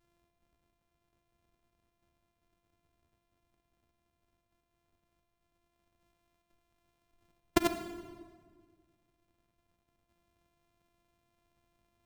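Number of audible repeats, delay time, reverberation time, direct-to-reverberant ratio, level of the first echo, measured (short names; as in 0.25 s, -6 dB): none, none, 1.6 s, 8.5 dB, none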